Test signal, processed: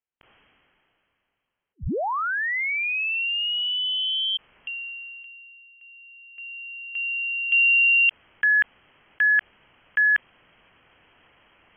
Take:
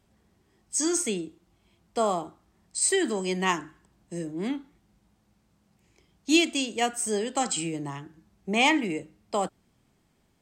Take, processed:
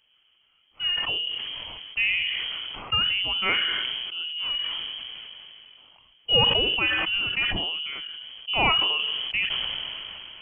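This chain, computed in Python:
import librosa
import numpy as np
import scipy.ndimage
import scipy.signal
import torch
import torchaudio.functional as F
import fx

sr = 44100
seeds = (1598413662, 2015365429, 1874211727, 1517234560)

y = fx.freq_invert(x, sr, carrier_hz=3200)
y = fx.sustainer(y, sr, db_per_s=20.0)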